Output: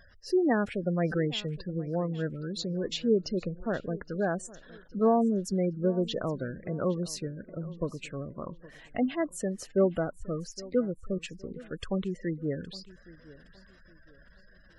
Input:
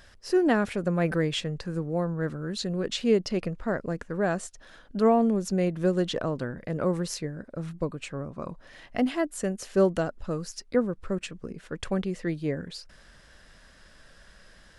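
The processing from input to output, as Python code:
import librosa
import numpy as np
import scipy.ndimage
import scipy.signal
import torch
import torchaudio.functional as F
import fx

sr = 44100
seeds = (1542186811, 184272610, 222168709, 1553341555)

y = fx.spec_gate(x, sr, threshold_db=-20, keep='strong')
y = fx.echo_feedback(y, sr, ms=816, feedback_pct=34, wet_db=-20.0)
y = y * 10.0 ** (-2.5 / 20.0)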